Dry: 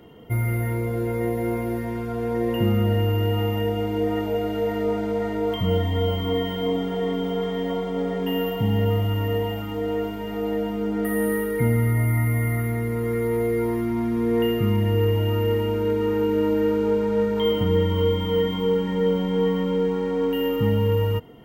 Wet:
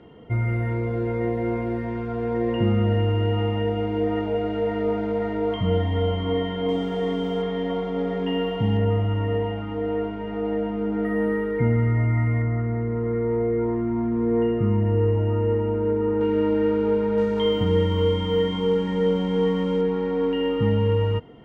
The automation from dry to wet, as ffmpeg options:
-af "asetnsamples=n=441:p=0,asendcmd='6.69 lowpass f 7500;7.42 lowpass f 3800;8.77 lowpass f 2200;12.42 lowpass f 1300;16.21 lowpass f 3100;17.18 lowpass f 7300;19.81 lowpass f 3600',lowpass=3000"

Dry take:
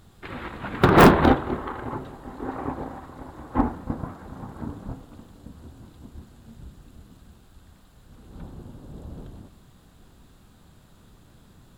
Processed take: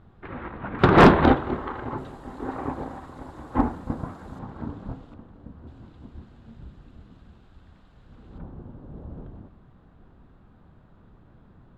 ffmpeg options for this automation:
-af "asetnsamples=n=441:p=0,asendcmd='0.79 lowpass f 4600;1.98 lowpass f 9600;4.39 lowpass f 3700;5.14 lowpass f 1700;5.67 lowpass f 3100;8.38 lowpass f 1600',lowpass=1700"

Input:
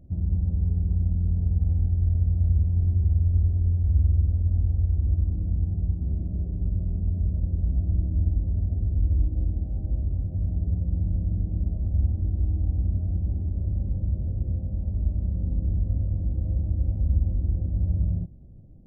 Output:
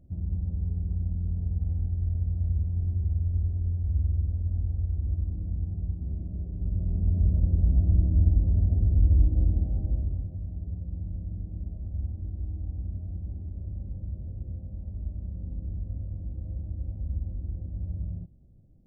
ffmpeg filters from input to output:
-af "volume=1.33,afade=t=in:st=6.53:d=0.73:silence=0.398107,afade=t=out:st=9.58:d=0.83:silence=0.266073"

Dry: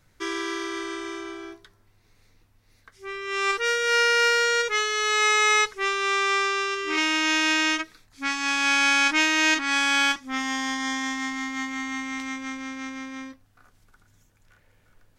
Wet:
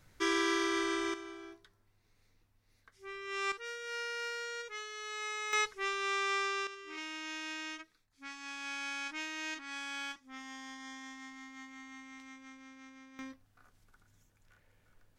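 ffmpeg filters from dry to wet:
-af "asetnsamples=n=441:p=0,asendcmd='1.14 volume volume -10.5dB;3.52 volume volume -19dB;5.53 volume volume -10dB;6.67 volume volume -19.5dB;13.19 volume volume -7dB',volume=0.891"

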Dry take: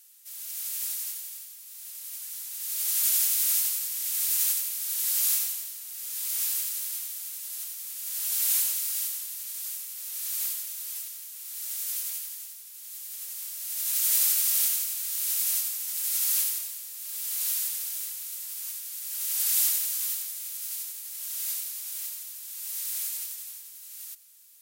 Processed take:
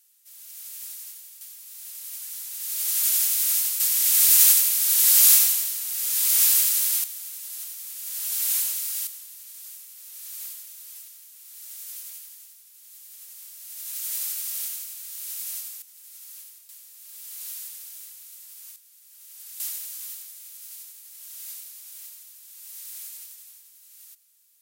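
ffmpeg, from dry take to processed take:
-af "asetnsamples=n=441:p=0,asendcmd='1.41 volume volume 2dB;3.8 volume volume 10dB;7.04 volume volume 0.5dB;9.07 volume volume -6.5dB;15.82 volume volume -18dB;16.69 volume volume -8dB;18.76 volume volume -17dB;19.6 volume volume -7dB',volume=0.501"

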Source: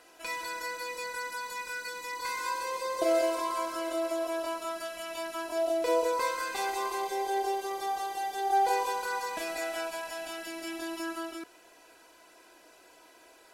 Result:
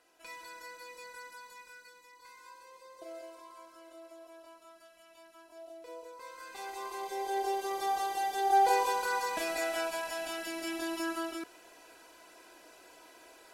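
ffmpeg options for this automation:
-af "volume=3.16,afade=t=out:st=1.2:d=0.92:silence=0.354813,afade=t=in:st=6.19:d=0.78:silence=0.223872,afade=t=in:st=6.97:d=0.97:silence=0.398107"

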